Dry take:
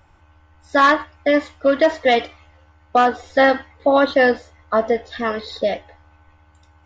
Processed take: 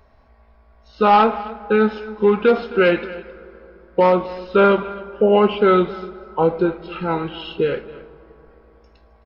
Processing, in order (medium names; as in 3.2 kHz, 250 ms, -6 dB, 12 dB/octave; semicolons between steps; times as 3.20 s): speed mistake 45 rpm record played at 33 rpm; on a send: delay 264 ms -18 dB; on the sum: plate-style reverb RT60 3.8 s, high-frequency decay 0.45×, pre-delay 0 ms, DRR 18.5 dB